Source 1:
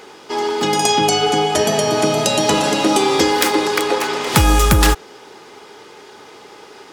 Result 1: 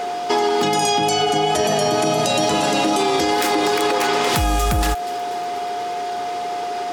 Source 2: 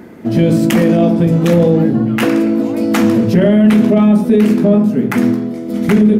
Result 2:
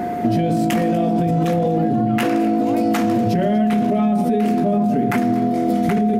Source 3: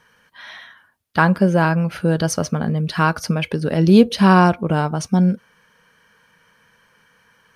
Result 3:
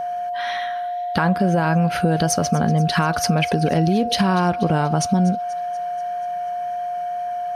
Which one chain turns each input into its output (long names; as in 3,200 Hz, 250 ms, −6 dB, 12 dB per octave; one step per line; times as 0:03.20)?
brickwall limiter −11.5 dBFS
downward compressor 6 to 1, threshold −24 dBFS
tape wow and flutter 15 cents
steady tone 710 Hz −31 dBFS
delay with a high-pass on its return 241 ms, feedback 60%, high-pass 1,800 Hz, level −17 dB
level +8 dB